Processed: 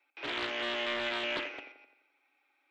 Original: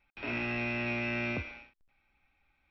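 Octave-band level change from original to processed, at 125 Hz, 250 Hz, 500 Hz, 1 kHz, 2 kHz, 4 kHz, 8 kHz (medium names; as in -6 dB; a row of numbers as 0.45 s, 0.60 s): -20.0 dB, -7.0 dB, +2.0 dB, +3.5 dB, -0.5 dB, +11.5 dB, no reading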